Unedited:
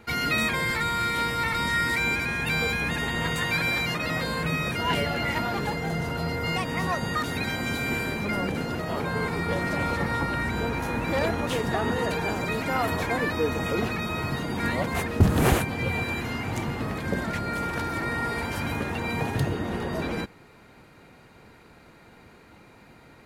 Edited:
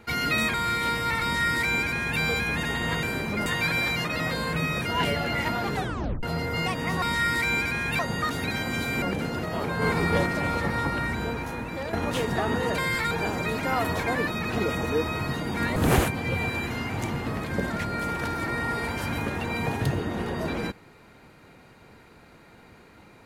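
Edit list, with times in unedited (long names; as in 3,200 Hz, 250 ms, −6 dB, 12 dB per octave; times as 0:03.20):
0:00.54–0:00.87: move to 0:12.14
0:01.56–0:02.53: duplicate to 0:06.92
0:05.65: tape stop 0.48 s
0:07.95–0:08.38: move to 0:03.36
0:09.18–0:09.62: clip gain +4 dB
0:10.34–0:11.29: fade out, to −9.5 dB
0:13.33–0:14.11: reverse
0:14.79–0:15.30: remove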